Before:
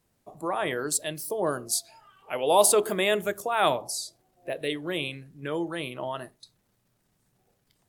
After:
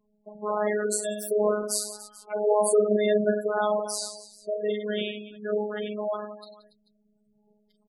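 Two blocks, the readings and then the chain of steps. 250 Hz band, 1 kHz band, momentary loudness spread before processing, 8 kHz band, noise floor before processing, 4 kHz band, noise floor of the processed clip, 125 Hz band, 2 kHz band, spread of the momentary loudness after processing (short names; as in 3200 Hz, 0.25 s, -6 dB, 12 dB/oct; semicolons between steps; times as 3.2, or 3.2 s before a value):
+2.0 dB, -3.5 dB, 16 LU, -3.5 dB, -72 dBFS, -5.0 dB, -69 dBFS, n/a, -4.0 dB, 14 LU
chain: limiter -16.5 dBFS, peak gain reduction 10 dB; thirty-one-band EQ 100 Hz +8 dB, 200 Hz +7 dB, 500 Hz +7 dB, 2500 Hz -6 dB; reverse bouncing-ball echo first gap 40 ms, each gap 1.4×, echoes 5; robotiser 210 Hz; spectral gate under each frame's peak -15 dB strong; gain +2 dB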